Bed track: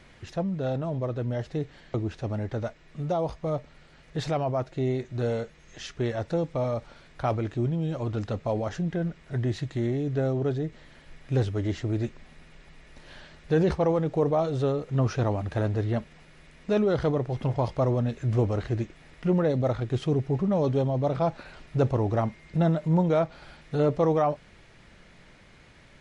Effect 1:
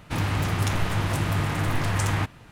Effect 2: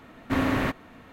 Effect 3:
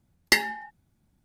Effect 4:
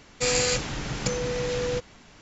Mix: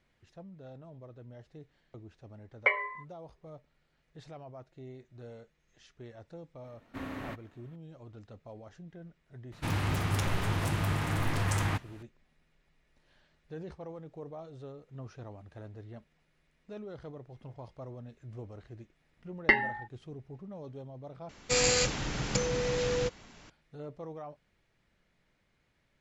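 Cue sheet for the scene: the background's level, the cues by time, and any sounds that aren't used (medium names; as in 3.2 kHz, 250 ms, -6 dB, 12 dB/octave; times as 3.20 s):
bed track -20 dB
2.34 s: add 3 -3 dB + mistuned SSB +190 Hz 200–2200 Hz
6.64 s: add 2 -15.5 dB
9.52 s: add 1 -5.5 dB
19.17 s: add 3 -0.5 dB + low-pass 2.5 kHz 24 dB/octave
21.29 s: replace with 4 -2.5 dB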